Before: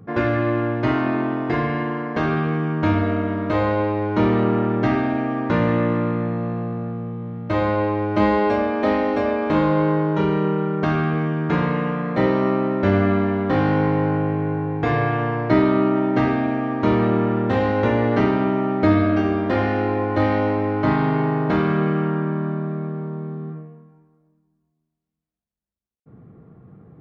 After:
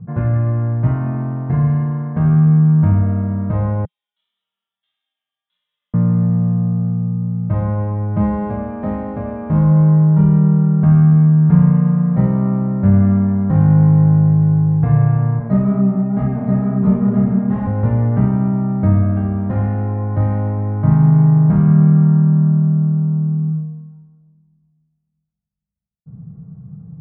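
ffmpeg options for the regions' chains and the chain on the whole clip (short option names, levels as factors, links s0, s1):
-filter_complex "[0:a]asettb=1/sr,asplit=3[s0][s1][s2];[s0]atrim=end=3.854[s3];[s1]atrim=start=3.85:end=5.94,asetpts=PTS-STARTPTS,afade=t=in:d=0.004:c=qsin,afade=t=out:st=2.086:d=0.004:c=qsin,asuperpass=centerf=3400:order=4:qfactor=7.2,flanger=delay=19:depth=5.5:speed=1.6[s4];[s2]atrim=start=5.936[s5];[s3][s4]acrossfade=d=0.004:c1=hsin:c2=qsin[s6];[s6][s5]acrossfade=d=0.004:c1=qsin:c2=hsin,asettb=1/sr,asplit=3[s7][s8][s9];[s7]atrim=end=15.394[s10];[s8]atrim=start=15.39:end=17.67,asetpts=PTS-STARTPTS,afade=t=in:d=0.004:c=qsin,afade=t=out:st=2.276:d=0.004:c=qsin,flanger=delay=15.5:depth=6.7:speed=2.2,aecho=1:1:4.8:0.83,atrim=end_sample=100548,aecho=1:1:973:0.668,atrim=end_sample=100548[s11];[s9]atrim=start=17.666[s12];[s10][s11]acrossfade=d=0.004:c1=hsin:c2=qsin[s13];[s13][s12]acrossfade=d=0.004:c1=qsin:c2=hsin,lowpass=1100,lowshelf=f=230:t=q:w=3:g=11,volume=0.631"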